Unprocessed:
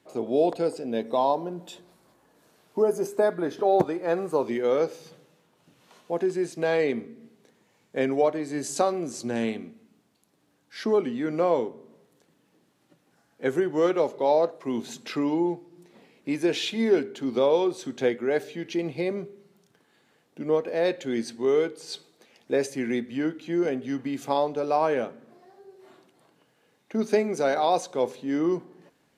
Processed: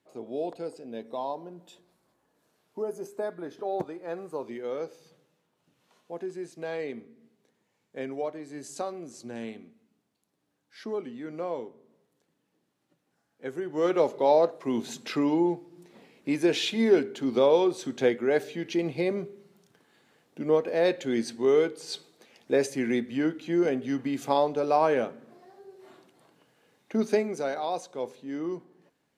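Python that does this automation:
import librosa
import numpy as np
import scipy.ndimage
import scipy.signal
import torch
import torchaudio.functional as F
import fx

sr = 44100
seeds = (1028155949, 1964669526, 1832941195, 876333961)

y = fx.gain(x, sr, db=fx.line((13.57, -10.0), (13.98, 0.5), (26.96, 0.5), (27.58, -8.0)))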